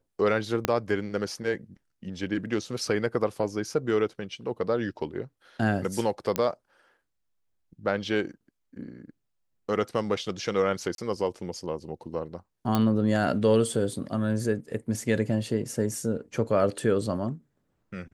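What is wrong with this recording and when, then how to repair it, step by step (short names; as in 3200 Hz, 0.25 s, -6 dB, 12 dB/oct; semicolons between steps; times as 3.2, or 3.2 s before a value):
0.65 pop -8 dBFS
6.36 pop -10 dBFS
10.95–10.98 gap 32 ms
12.75 pop -11 dBFS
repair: de-click; interpolate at 10.95, 32 ms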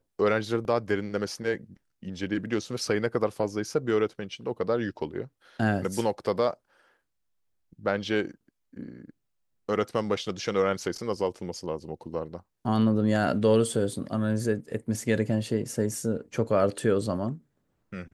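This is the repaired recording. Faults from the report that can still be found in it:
0.65 pop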